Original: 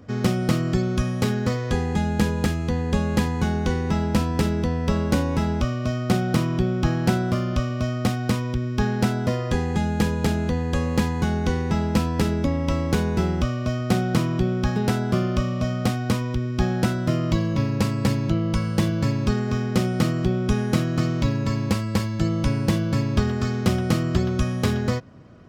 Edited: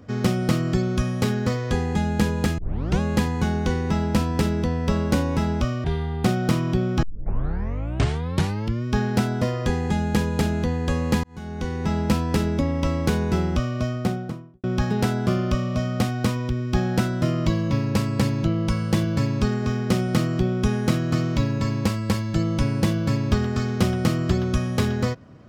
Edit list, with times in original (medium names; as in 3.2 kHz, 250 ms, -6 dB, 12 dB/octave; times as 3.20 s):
2.58 s: tape start 0.42 s
5.84–6.10 s: speed 64%
6.88 s: tape start 1.82 s
11.09–11.84 s: fade in
13.61–14.49 s: studio fade out